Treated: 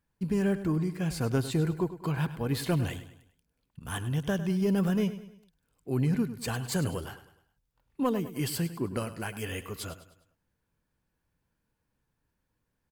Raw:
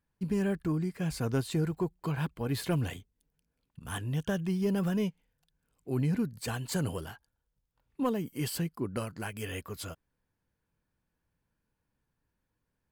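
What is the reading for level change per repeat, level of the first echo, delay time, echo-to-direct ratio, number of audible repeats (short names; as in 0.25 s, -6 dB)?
-7.5 dB, -13.5 dB, 0.102 s, -12.5 dB, 3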